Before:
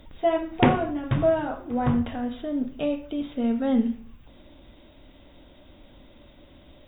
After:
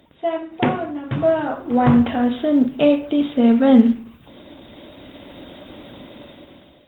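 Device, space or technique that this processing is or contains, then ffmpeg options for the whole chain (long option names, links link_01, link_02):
video call: -af "highpass=130,dynaudnorm=framelen=350:gausssize=5:maxgain=16dB" -ar 48000 -c:a libopus -b:a 20k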